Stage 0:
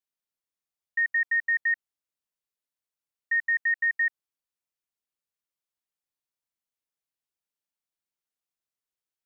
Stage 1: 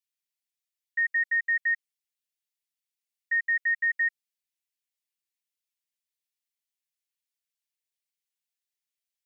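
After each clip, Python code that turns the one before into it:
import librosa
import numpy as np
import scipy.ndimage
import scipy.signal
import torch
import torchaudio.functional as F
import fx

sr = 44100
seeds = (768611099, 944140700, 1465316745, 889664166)

y = scipy.signal.sosfilt(scipy.signal.butter(6, 1800.0, 'highpass', fs=sr, output='sos'), x)
y = y + 0.67 * np.pad(y, (int(6.9 * sr / 1000.0), 0))[:len(y)]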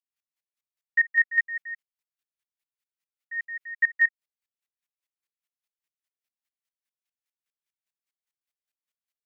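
y = fx.peak_eq(x, sr, hz=1600.0, db=7.5, octaves=2.1)
y = fx.volume_shaper(y, sr, bpm=148, per_beat=2, depth_db=-22, release_ms=159.0, shape='slow start')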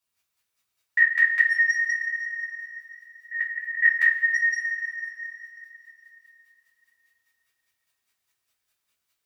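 y = fx.echo_tape(x, sr, ms=514, feedback_pct=47, wet_db=-10.0, lp_hz=2000.0, drive_db=19.0, wow_cents=38)
y = fx.rev_double_slope(y, sr, seeds[0], early_s=0.22, late_s=3.1, knee_db=-19, drr_db=-9.5)
y = fx.dynamic_eq(y, sr, hz=1300.0, q=1.4, threshold_db=-35.0, ratio=4.0, max_db=-5)
y = y * librosa.db_to_amplitude(5.0)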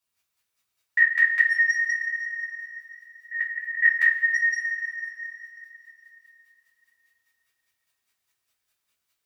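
y = x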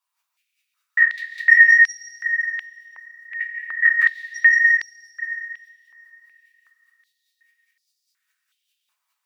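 y = fx.rev_freeverb(x, sr, rt60_s=1.9, hf_ratio=0.9, predelay_ms=100, drr_db=5.5)
y = fx.filter_held_highpass(y, sr, hz=2.7, low_hz=980.0, high_hz=4900.0)
y = y * librosa.db_to_amplitude(-1.5)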